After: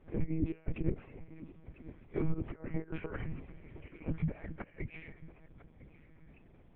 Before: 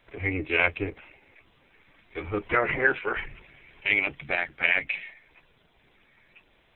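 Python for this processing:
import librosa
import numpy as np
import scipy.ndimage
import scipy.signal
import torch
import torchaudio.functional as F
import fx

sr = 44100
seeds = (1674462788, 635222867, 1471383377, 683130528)

p1 = fx.over_compress(x, sr, threshold_db=-33.0, ratio=-0.5)
p2 = fx.bandpass_q(p1, sr, hz=140.0, q=1.3)
p3 = p2 + fx.echo_feedback(p2, sr, ms=999, feedback_pct=28, wet_db=-17.0, dry=0)
p4 = fx.lpc_monotone(p3, sr, seeds[0], pitch_hz=160.0, order=10)
y = p4 * librosa.db_to_amplitude(8.0)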